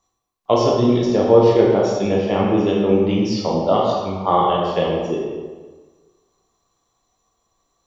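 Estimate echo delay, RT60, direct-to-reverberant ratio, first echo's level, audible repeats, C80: no echo audible, 1.4 s, −3.0 dB, no echo audible, no echo audible, 2.5 dB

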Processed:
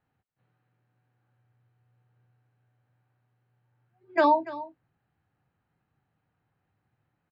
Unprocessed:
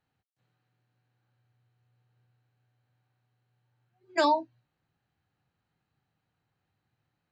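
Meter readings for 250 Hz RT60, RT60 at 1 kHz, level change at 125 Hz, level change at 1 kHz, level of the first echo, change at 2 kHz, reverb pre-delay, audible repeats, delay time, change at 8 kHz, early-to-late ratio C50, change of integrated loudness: no reverb audible, no reverb audible, can't be measured, +3.5 dB, −16.5 dB, +2.5 dB, no reverb audible, 1, 289 ms, below −15 dB, no reverb audible, +3.0 dB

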